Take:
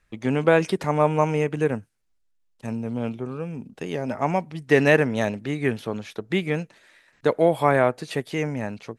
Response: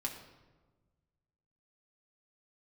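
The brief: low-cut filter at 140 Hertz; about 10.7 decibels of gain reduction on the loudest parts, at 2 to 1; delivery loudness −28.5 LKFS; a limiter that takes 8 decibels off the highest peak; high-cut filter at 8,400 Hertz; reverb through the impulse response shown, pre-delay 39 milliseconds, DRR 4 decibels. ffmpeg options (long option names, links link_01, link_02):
-filter_complex "[0:a]highpass=140,lowpass=8400,acompressor=threshold=-32dB:ratio=2,alimiter=limit=-21.5dB:level=0:latency=1,asplit=2[link_01][link_02];[1:a]atrim=start_sample=2205,adelay=39[link_03];[link_02][link_03]afir=irnorm=-1:irlink=0,volume=-4.5dB[link_04];[link_01][link_04]amix=inputs=2:normalize=0,volume=4dB"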